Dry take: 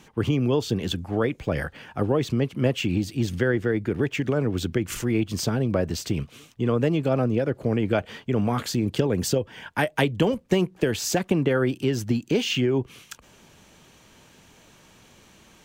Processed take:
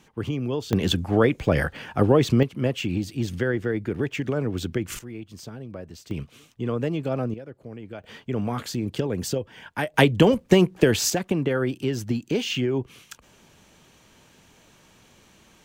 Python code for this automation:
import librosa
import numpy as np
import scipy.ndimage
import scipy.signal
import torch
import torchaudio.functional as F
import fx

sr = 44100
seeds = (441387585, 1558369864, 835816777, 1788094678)

y = fx.gain(x, sr, db=fx.steps((0.0, -5.0), (0.73, 5.0), (2.43, -2.0), (4.99, -14.0), (6.11, -4.0), (7.34, -15.5), (8.04, -3.5), (9.94, 5.0), (11.1, -2.0)))